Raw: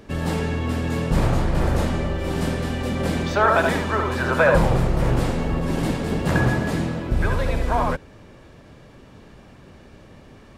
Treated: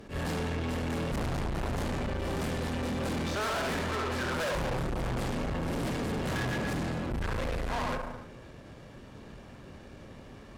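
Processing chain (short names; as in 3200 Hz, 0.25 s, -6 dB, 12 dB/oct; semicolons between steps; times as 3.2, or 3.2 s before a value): non-linear reverb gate 0.37 s falling, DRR 8.5 dB; tube stage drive 30 dB, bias 0.55; attack slew limiter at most 200 dB/s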